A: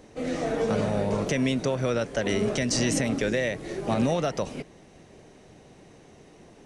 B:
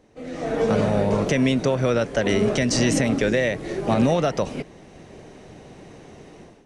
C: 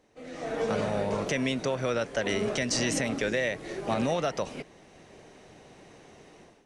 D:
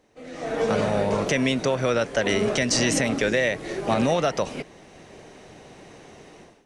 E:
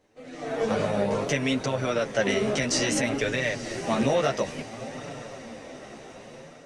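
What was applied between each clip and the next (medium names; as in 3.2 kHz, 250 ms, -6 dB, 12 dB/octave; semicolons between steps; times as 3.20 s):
treble shelf 5.1 kHz -5.5 dB; level rider gain up to 14.5 dB; trim -6.5 dB
bass shelf 450 Hz -8 dB; trim -4 dB
level rider gain up to 3.5 dB; trim +2.5 dB
echo that smears into a reverb 905 ms, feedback 52%, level -13.5 dB; chorus voices 2, 0.59 Hz, delay 11 ms, depth 4.3 ms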